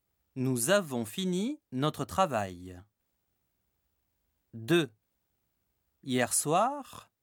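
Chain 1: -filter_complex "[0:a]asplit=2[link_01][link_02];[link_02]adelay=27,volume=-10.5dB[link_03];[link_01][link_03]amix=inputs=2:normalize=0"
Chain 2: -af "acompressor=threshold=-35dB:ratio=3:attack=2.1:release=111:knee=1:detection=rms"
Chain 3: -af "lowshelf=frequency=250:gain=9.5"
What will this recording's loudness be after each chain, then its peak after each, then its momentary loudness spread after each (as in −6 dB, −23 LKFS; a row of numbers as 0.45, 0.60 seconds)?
−30.0, −40.0, −27.5 LKFS; −13.0, −24.5, −12.0 dBFS; 19, 12, 17 LU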